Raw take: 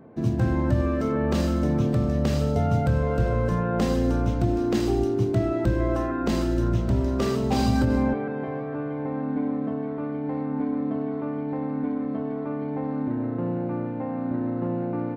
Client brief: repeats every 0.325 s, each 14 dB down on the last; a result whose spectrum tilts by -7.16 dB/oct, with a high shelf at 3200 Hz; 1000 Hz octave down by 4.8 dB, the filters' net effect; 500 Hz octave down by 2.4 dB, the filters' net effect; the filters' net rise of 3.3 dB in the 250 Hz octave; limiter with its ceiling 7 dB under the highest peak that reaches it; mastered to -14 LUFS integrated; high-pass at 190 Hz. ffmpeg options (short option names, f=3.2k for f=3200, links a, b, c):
-af "highpass=190,equalizer=f=250:t=o:g=7,equalizer=f=500:t=o:g=-5,equalizer=f=1k:t=o:g=-5.5,highshelf=f=3.2k:g=3.5,alimiter=limit=-16.5dB:level=0:latency=1,aecho=1:1:325|650:0.2|0.0399,volume=11.5dB"